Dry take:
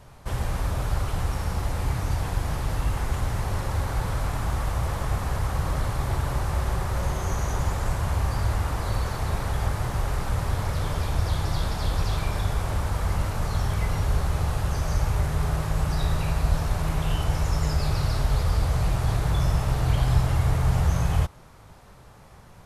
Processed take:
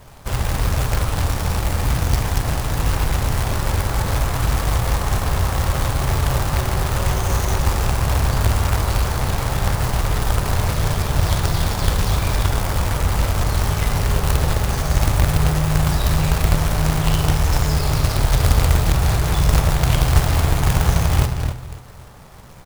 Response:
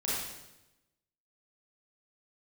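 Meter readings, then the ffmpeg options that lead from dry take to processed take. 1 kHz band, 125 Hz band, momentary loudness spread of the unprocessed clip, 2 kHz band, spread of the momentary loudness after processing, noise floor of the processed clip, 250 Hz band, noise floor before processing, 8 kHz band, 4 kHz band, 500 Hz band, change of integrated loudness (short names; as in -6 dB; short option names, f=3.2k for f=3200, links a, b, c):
+7.0 dB, +6.5 dB, 5 LU, +8.5 dB, 4 LU, -36 dBFS, +7.5 dB, -49 dBFS, +11.0 dB, +10.0 dB, +7.5 dB, +7.0 dB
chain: -filter_complex "[0:a]asplit=2[a][b];[b]adelay=267,lowpass=f=930:p=1,volume=-6dB,asplit=2[c][d];[d]adelay=267,lowpass=f=930:p=1,volume=0.21,asplit=2[e][f];[f]adelay=267,lowpass=f=930:p=1,volume=0.21[g];[a][c][e][g]amix=inputs=4:normalize=0,acrusher=bits=2:mode=log:mix=0:aa=0.000001,asplit=2[h][i];[1:a]atrim=start_sample=2205[j];[i][j]afir=irnorm=-1:irlink=0,volume=-16dB[k];[h][k]amix=inputs=2:normalize=0,volume=4dB"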